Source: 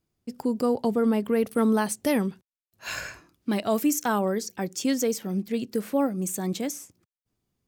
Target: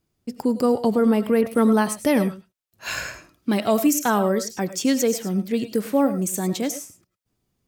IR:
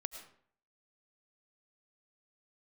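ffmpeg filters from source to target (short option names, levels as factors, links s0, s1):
-filter_complex "[1:a]atrim=start_sample=2205,afade=t=out:st=0.16:d=0.01,atrim=end_sample=7497[s0];[0:a][s0]afir=irnorm=-1:irlink=0,asettb=1/sr,asplit=3[s1][s2][s3];[s1]atrim=end=1.414[s4];[s2]atrim=start=1.41:end=2.17,asetpts=PTS-STARTPTS,afade=t=in:d=0.004:c=qsin,afade=t=out:st=0.756:d=0.004:c=qsin,adynamicequalizer=threshold=0.00501:dfrequency=3400:dqfactor=0.7:tfrequency=3400:tqfactor=0.7:attack=5:release=100:ratio=0.375:range=2.5:mode=cutabove:tftype=highshelf[s5];[s3]atrim=start=2.166[s6];[s4][s5]acrossfade=d=0.004:c1=hsin:c2=qsin[s7];[s7][s6]acrossfade=d=0.004:c1=qsin:c2=hsin,volume=2.24"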